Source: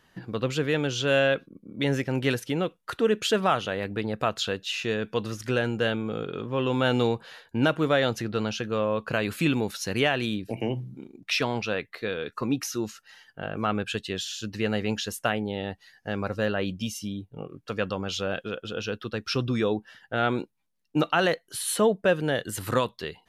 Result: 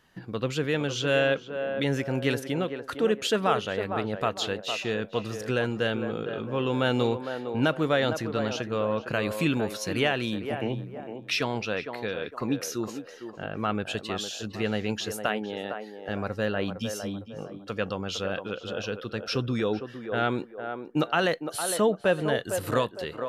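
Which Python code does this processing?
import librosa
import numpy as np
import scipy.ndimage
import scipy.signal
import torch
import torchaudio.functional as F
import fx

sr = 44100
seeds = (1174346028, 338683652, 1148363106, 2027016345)

y = fx.highpass(x, sr, hz=220.0, slope=12, at=(15.26, 16.09))
y = fx.echo_banded(y, sr, ms=457, feedback_pct=42, hz=640.0, wet_db=-6)
y = y * 10.0 ** (-1.5 / 20.0)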